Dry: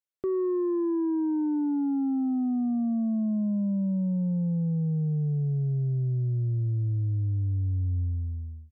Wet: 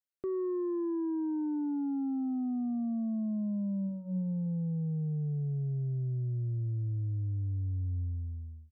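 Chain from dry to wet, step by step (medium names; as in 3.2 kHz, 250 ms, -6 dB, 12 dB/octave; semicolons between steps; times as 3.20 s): 3.87–4.46 s: de-hum 47.08 Hz, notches 17; trim -6 dB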